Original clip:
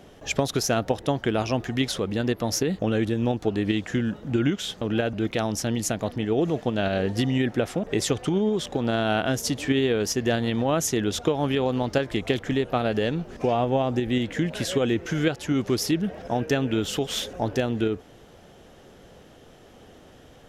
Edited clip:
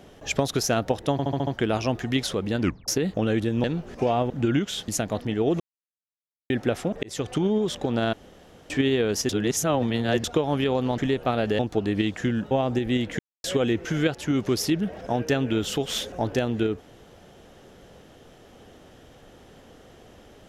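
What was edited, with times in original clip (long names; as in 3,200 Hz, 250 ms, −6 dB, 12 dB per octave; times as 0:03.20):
0:01.12: stutter 0.07 s, 6 plays
0:02.25: tape stop 0.28 s
0:03.29–0:04.21: swap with 0:13.06–0:13.72
0:04.79–0:05.79: remove
0:06.51–0:07.41: silence
0:07.94–0:08.24: fade in
0:09.04–0:09.61: fill with room tone
0:10.20–0:11.15: reverse
0:11.89–0:12.45: remove
0:14.40–0:14.65: silence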